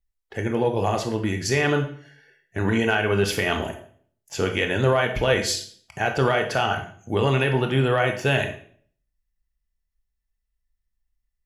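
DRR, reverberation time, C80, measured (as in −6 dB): 4.5 dB, 0.50 s, 12.5 dB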